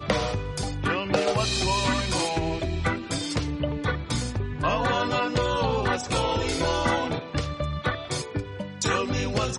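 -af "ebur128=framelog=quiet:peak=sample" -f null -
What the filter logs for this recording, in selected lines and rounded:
Integrated loudness:
  I:         -26.4 LUFS
  Threshold: -36.4 LUFS
Loudness range:
  LRA:         1.8 LU
  Threshold: -46.3 LUFS
  LRA low:   -27.2 LUFS
  LRA high:  -25.4 LUFS
Sample peak:
  Peak:      -10.3 dBFS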